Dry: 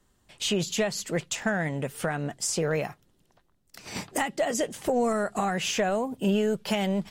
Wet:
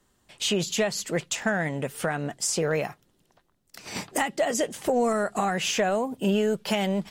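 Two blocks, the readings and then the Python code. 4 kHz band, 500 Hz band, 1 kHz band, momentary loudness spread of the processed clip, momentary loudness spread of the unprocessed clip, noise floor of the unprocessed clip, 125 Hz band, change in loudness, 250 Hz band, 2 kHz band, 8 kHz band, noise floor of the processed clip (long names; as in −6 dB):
+2.0 dB, +1.5 dB, +2.0 dB, 6 LU, 6 LU, −67 dBFS, 0.0 dB, +1.5 dB, +0.5 dB, +2.0 dB, +2.0 dB, −68 dBFS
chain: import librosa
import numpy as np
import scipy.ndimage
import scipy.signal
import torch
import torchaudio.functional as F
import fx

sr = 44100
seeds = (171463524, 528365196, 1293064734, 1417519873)

y = fx.low_shelf(x, sr, hz=120.0, db=-6.5)
y = y * librosa.db_to_amplitude(2.0)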